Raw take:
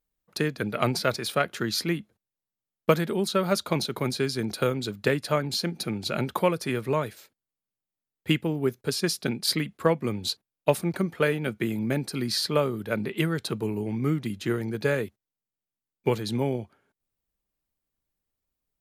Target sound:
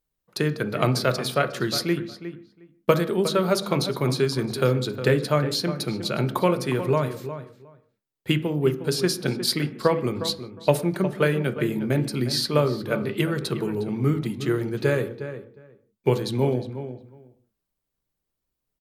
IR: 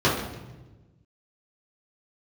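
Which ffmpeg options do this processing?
-filter_complex "[0:a]asplit=2[link_01][link_02];[link_02]adelay=359,lowpass=frequency=2400:poles=1,volume=-11dB,asplit=2[link_03][link_04];[link_04]adelay=359,lowpass=frequency=2400:poles=1,volume=0.16[link_05];[link_01][link_03][link_05]amix=inputs=3:normalize=0,asplit=2[link_06][link_07];[1:a]atrim=start_sample=2205,afade=type=out:start_time=0.23:duration=0.01,atrim=end_sample=10584[link_08];[link_07][link_08]afir=irnorm=-1:irlink=0,volume=-27dB[link_09];[link_06][link_09]amix=inputs=2:normalize=0,volume=1dB"

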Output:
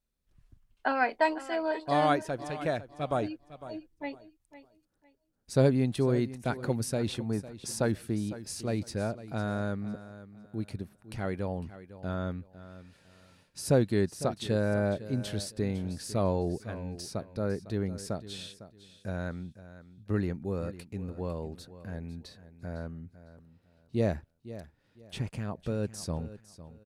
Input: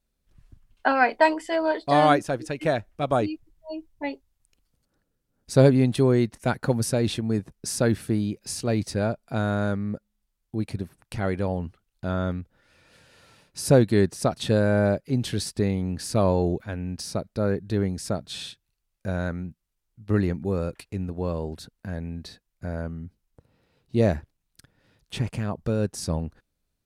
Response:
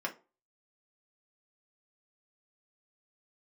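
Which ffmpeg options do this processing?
-filter_complex "[0:a]asettb=1/sr,asplit=3[link_01][link_02][link_03];[link_01]atrim=end=7.094[link_04];[link_02]atrim=start=7.09:end=7.87,asetpts=PTS-STARTPTS,afade=type=in:duration=0.004:curve=qsin,afade=type=out:start_time=0.776:duration=0.004:curve=qsin,equalizer=frequency=880:width_type=o:width=0.77:gain=6.5[link_05];[link_03]atrim=start=7.866[link_06];[link_04][link_05]acrossfade=duration=0.004:curve1=hsin:curve2=qsin[link_07];[link_07][link_06]acrossfade=duration=0.004:curve1=qsin:curve2=hsin,aecho=1:1:504|1008|1512:0.178|0.0445|0.0111,volume=-7dB"

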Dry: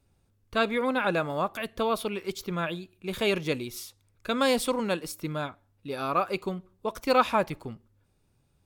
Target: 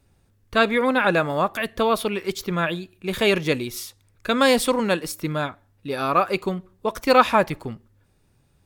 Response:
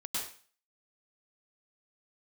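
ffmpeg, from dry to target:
-af "equalizer=frequency=1800:width_type=o:width=0.28:gain=5,volume=6.5dB"

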